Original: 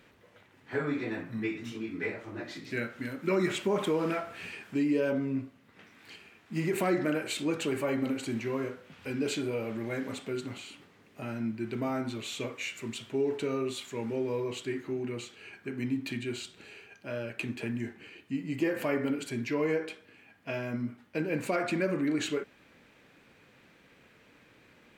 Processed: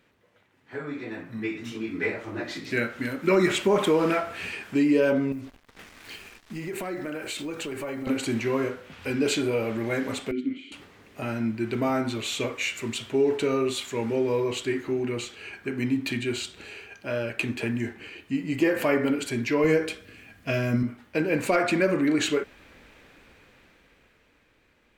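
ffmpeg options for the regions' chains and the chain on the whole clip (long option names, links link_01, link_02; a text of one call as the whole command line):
ffmpeg -i in.wav -filter_complex "[0:a]asettb=1/sr,asplit=3[link_01][link_02][link_03];[link_01]atrim=end=5.324[link_04];[link_02]atrim=start=5.32:end=8.07,asetpts=PTS-STARTPTS,afade=type=in:duration=0.004:curve=qsin,afade=type=out:start_time=2.746:duration=0.004:curve=qsin,acrusher=bits=8:mix=0:aa=0.5,acompressor=threshold=-40dB:ratio=3:attack=3.2:release=140:knee=1:detection=peak[link_05];[link_03]atrim=start=8.066[link_06];[link_04][link_05]acrossfade=duration=0.004:curve1=hsin:curve2=qsin[link_07];[link_07][link_06]acrossfade=duration=0.004:curve1=qsin:curve2=hsin,asettb=1/sr,asplit=3[link_08][link_09][link_10];[link_08]atrim=end=10.314[link_11];[link_09]atrim=start=10.31:end=10.72,asetpts=PTS-STARTPTS,afade=type=in:duration=0.004:curve=qsin,afade=type=out:start_time=0.406:duration=0.004:curve=qsin,asplit=3[link_12][link_13][link_14];[link_12]bandpass=frequency=270:width_type=q:width=8,volume=0dB[link_15];[link_13]bandpass=frequency=2290:width_type=q:width=8,volume=-6dB[link_16];[link_14]bandpass=frequency=3010:width_type=q:width=8,volume=-9dB[link_17];[link_15][link_16][link_17]amix=inputs=3:normalize=0,equalizer=frequency=400:width=0.31:gain=9.5[link_18];[link_10]atrim=start=10.716[link_19];[link_11][link_18]acrossfade=duration=0.004:curve1=hsin:curve2=qsin[link_20];[link_20][link_19]acrossfade=duration=0.004:curve1=qsin:curve2=hsin,asettb=1/sr,asplit=3[link_21][link_22][link_23];[link_21]atrim=end=19.644[link_24];[link_22]atrim=start=19.64:end=20.83,asetpts=PTS-STARTPTS,afade=type=in:duration=0.004:curve=qsin,afade=type=out:start_time=1.186:duration=0.004:curve=qsin,bass=frequency=250:gain=8,treble=frequency=4000:gain=6,bandreject=frequency=880:width=5.3[link_25];[link_23]atrim=start=20.826[link_26];[link_24][link_25]acrossfade=duration=0.004:curve1=hsin:curve2=qsin[link_27];[link_27][link_26]acrossfade=duration=0.004:curve1=qsin:curve2=hsin,asubboost=boost=6.5:cutoff=53,dynaudnorm=framelen=100:gausssize=31:maxgain=13dB,volume=-5dB" out.wav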